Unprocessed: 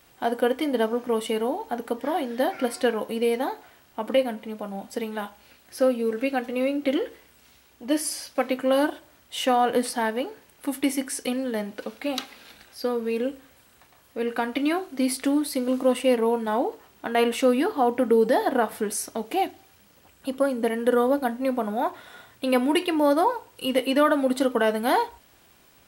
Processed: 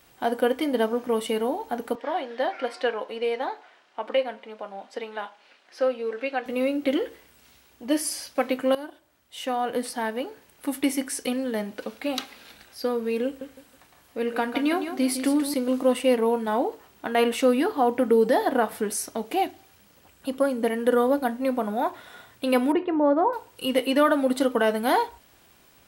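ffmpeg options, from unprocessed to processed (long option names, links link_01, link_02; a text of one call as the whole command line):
ffmpeg -i in.wav -filter_complex "[0:a]asettb=1/sr,asplit=3[link_01][link_02][link_03];[link_01]atrim=end=1.954[link_04];[link_02]atrim=start=1.95:end=6.46,asetpts=PTS-STARTPTS,afade=type=in:duration=0.004:curve=qsin,afade=type=out:start_time=4.506:duration=0.004:curve=qsin,highpass=460,lowpass=4300[link_05];[link_03]atrim=start=6.456[link_06];[link_04][link_05]acrossfade=duration=0.004:curve1=hsin:curve2=qsin[link_07];[link_07][link_06]acrossfade=duration=0.004:curve1=qsin:curve2=hsin,asettb=1/sr,asplit=3[link_08][link_09][link_10];[link_08]atrim=end=13.254[link_11];[link_09]atrim=start=13.25:end=15.54,asetpts=PTS-STARTPTS,afade=type=in:duration=0.004:curve=qsin,afade=type=out:start_time=2.286:duration=0.004:curve=qsin,aecho=1:1:160|320|480:0.355|0.0958|0.0259,atrim=end_sample=100989[link_12];[link_10]atrim=start=15.536[link_13];[link_11][link_12]acrossfade=duration=0.004:curve1=hsin:curve2=qsin[link_14];[link_14][link_13]acrossfade=duration=0.004:curve1=qsin:curve2=hsin,asettb=1/sr,asplit=3[link_15][link_16][link_17];[link_15]atrim=end=22.724[link_18];[link_16]atrim=start=22.72:end=23.33,asetpts=PTS-STARTPTS,afade=type=in:duration=0.004:curve=qsin,afade=type=out:start_time=0.606:duration=0.004:curve=qsin,lowpass=1200[link_19];[link_17]atrim=start=23.326[link_20];[link_18][link_19]acrossfade=duration=0.004:curve1=hsin:curve2=qsin[link_21];[link_21][link_20]acrossfade=duration=0.004:curve1=qsin:curve2=hsin,asplit=2[link_22][link_23];[link_22]atrim=end=8.75,asetpts=PTS-STARTPTS,afade=type=out:start_time=8.746:duration=0.004:curve=hsin:silence=0.149624[link_24];[link_23]atrim=start=8.75,asetpts=PTS-STARTPTS,afade=type=in:duration=1.97:silence=0.149624[link_25];[link_24][link_25]concat=n=2:v=0:a=1" out.wav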